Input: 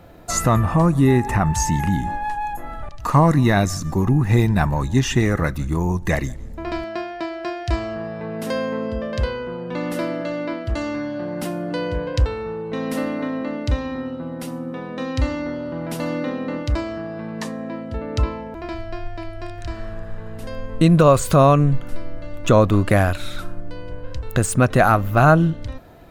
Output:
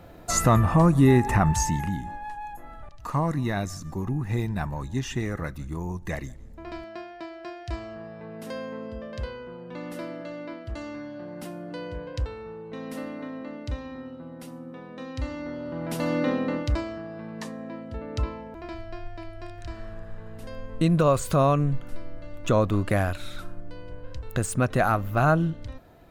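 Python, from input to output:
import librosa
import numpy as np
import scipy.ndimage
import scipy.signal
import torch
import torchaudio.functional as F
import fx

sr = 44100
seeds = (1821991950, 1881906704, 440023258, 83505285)

y = fx.gain(x, sr, db=fx.line((1.49, -2.0), (2.05, -11.0), (15.17, -11.0), (16.32, 1.0), (17.01, -7.5)))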